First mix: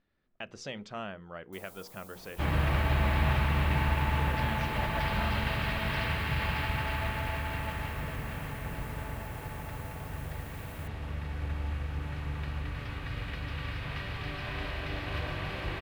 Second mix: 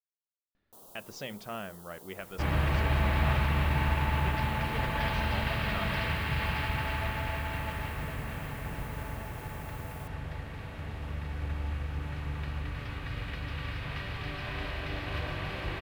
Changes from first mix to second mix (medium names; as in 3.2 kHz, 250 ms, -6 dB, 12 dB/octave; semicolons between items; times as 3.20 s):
speech: entry +0.55 s; first sound: entry -0.80 s